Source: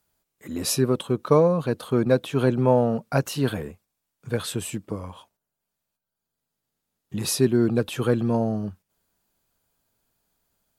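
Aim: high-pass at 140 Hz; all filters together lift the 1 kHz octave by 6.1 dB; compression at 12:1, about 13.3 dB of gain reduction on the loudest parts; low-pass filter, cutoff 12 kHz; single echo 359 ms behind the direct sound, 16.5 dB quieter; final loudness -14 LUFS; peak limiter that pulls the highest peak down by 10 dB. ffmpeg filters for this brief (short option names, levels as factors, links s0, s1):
-af "highpass=140,lowpass=12000,equalizer=f=1000:t=o:g=7.5,acompressor=threshold=0.0631:ratio=12,alimiter=limit=0.0891:level=0:latency=1,aecho=1:1:359:0.15,volume=8.41"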